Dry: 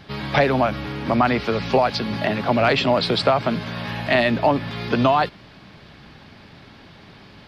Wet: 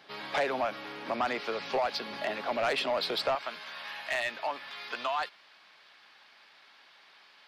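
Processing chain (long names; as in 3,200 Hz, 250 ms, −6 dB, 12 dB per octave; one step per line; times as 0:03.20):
high-pass filter 450 Hz 12 dB per octave, from 0:03.35 1,000 Hz
soft clipping −14.5 dBFS, distortion −14 dB
level −7.5 dB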